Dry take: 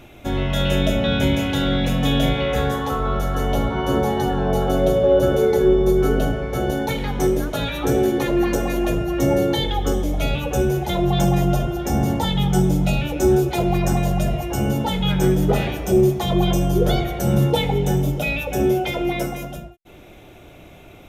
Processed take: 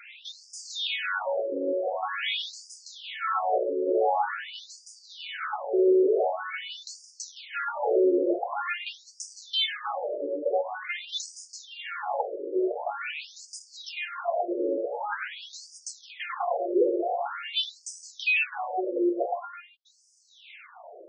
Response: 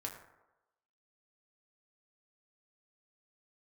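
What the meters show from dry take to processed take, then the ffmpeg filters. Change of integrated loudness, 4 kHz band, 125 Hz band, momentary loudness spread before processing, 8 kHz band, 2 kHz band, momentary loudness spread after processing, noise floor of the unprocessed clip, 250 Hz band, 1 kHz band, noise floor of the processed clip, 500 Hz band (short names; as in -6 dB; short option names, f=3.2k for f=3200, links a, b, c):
-8.5 dB, -5.0 dB, under -40 dB, 6 LU, -8.0 dB, -3.0 dB, 17 LU, -44 dBFS, -13.0 dB, -5.0 dB, -56 dBFS, -7.5 dB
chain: -filter_complex "[0:a]asplit=2[a][b];[b]highpass=f=720:p=1,volume=22dB,asoftclip=type=tanh:threshold=-4.5dB[c];[a][c]amix=inputs=2:normalize=0,lowpass=f=3.4k:p=1,volume=-6dB,afftfilt=real='re*between(b*sr/1024,400*pow(6700/400,0.5+0.5*sin(2*PI*0.46*pts/sr))/1.41,400*pow(6700/400,0.5+0.5*sin(2*PI*0.46*pts/sr))*1.41)':imag='im*between(b*sr/1024,400*pow(6700/400,0.5+0.5*sin(2*PI*0.46*pts/sr))/1.41,400*pow(6700/400,0.5+0.5*sin(2*PI*0.46*pts/sr))*1.41)':win_size=1024:overlap=0.75,volume=-7.5dB"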